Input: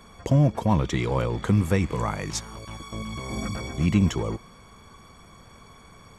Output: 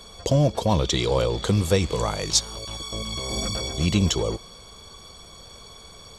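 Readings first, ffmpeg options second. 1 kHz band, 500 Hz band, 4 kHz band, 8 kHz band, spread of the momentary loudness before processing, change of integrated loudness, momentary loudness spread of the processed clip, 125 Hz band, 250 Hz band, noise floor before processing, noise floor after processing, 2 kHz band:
+1.0 dB, +5.5 dB, +12.5 dB, +10.0 dB, 14 LU, +1.5 dB, 22 LU, −0.5 dB, −1.5 dB, −50 dBFS, −46 dBFS, +0.5 dB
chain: -af "equalizer=frequency=125:width_type=o:width=1:gain=-5,equalizer=frequency=250:width_type=o:width=1:gain=-7,equalizer=frequency=500:width_type=o:width=1:gain=4,equalizer=frequency=1000:width_type=o:width=1:gain=-4,equalizer=frequency=2000:width_type=o:width=1:gain=-8,equalizer=frequency=4000:width_type=o:width=1:gain=12,equalizer=frequency=8000:width_type=o:width=1:gain=3,volume=4.5dB"

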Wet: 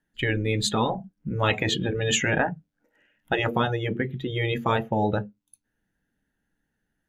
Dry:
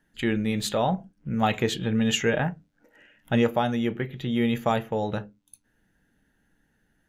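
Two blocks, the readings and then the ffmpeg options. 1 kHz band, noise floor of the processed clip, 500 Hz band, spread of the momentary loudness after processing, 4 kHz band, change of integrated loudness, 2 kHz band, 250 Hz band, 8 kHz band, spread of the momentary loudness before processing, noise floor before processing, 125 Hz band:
+1.0 dB, −79 dBFS, 0.0 dB, 7 LU, +3.0 dB, +0.5 dB, +4.5 dB, −4.0 dB, +4.0 dB, 8 LU, −70 dBFS, +2.0 dB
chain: -af "afftdn=noise_reduction=15:noise_floor=-34,afftfilt=real='re*lt(hypot(re,im),0.316)':imag='im*lt(hypot(re,im),0.316)':win_size=1024:overlap=0.75,volume=6dB"

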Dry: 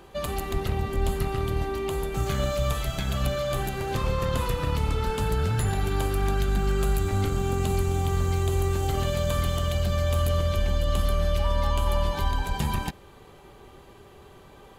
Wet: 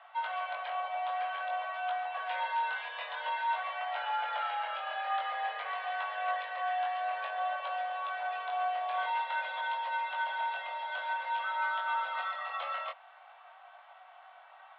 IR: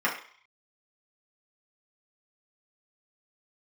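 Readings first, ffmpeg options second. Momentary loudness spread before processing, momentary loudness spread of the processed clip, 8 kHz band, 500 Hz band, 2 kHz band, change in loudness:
4 LU, 4 LU, below −40 dB, −14.0 dB, +2.5 dB, −7.5 dB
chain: -af "flanger=delay=18.5:depth=5:speed=0.51,highpass=frequency=300:width_type=q:width=0.5412,highpass=frequency=300:width_type=q:width=1.307,lowpass=frequency=2900:width_type=q:width=0.5176,lowpass=frequency=2900:width_type=q:width=0.7071,lowpass=frequency=2900:width_type=q:width=1.932,afreqshift=340"

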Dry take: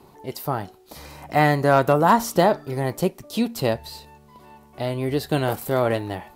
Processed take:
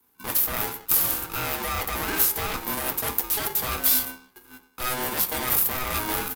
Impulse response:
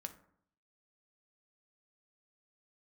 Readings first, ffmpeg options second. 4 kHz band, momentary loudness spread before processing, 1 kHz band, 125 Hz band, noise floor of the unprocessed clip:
+3.5 dB, 17 LU, −8.5 dB, −12.5 dB, −52 dBFS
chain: -filter_complex "[0:a]aemphasis=mode=production:type=bsi,agate=range=-30dB:threshold=-44dB:ratio=16:detection=peak,acrossover=split=4200[link_01][link_02];[link_02]acompressor=threshold=-27dB:ratio=4:attack=1:release=60[link_03];[link_01][link_03]amix=inputs=2:normalize=0,equalizer=frequency=6400:width=0.55:gain=-10.5,alimiter=limit=-12.5dB:level=0:latency=1:release=27,areverse,acompressor=threshold=-32dB:ratio=6,areverse,asplit=2[link_04][link_05];[link_05]adelay=280,highpass=300,lowpass=3400,asoftclip=type=hard:threshold=-30.5dB,volume=-28dB[link_06];[link_04][link_06]amix=inputs=2:normalize=0,acrossover=split=890[link_07][link_08];[link_07]aeval=exprs='0.0501*sin(PI/2*3.55*val(0)/0.0501)':channel_layout=same[link_09];[link_08]crystalizer=i=8.5:c=0[link_10];[link_09][link_10]amix=inputs=2:normalize=0[link_11];[1:a]atrim=start_sample=2205,afade=type=out:start_time=0.27:duration=0.01,atrim=end_sample=12348[link_12];[link_11][link_12]afir=irnorm=-1:irlink=0,aresample=32000,aresample=44100,aeval=exprs='val(0)*sgn(sin(2*PI*630*n/s))':channel_layout=same,volume=2.5dB"

